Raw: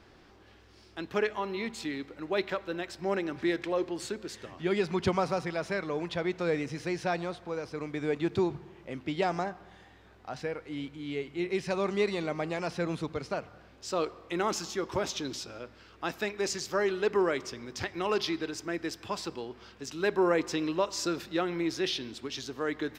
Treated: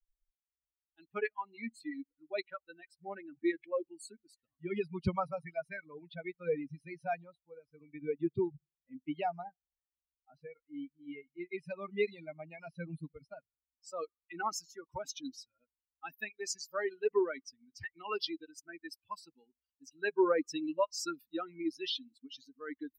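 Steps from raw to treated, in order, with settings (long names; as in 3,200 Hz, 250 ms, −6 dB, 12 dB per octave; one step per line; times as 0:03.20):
spectral dynamics exaggerated over time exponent 3
level +2 dB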